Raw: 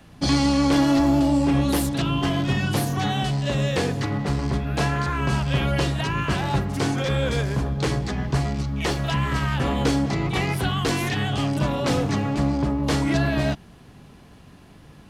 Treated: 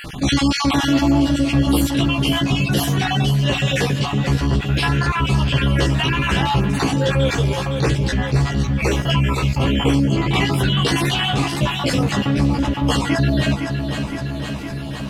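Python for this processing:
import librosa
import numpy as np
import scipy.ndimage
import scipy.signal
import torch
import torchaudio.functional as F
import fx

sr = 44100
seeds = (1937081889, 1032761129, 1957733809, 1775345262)

y = fx.spec_dropout(x, sr, seeds[0], share_pct=39)
y = fx.peak_eq(y, sr, hz=2900.0, db=5.5, octaves=0.39)
y = fx.doubler(y, sr, ms=15.0, db=-3.0)
y = fx.echo_feedback(y, sr, ms=512, feedback_pct=55, wet_db=-12)
y = fx.env_flatten(y, sr, amount_pct=50)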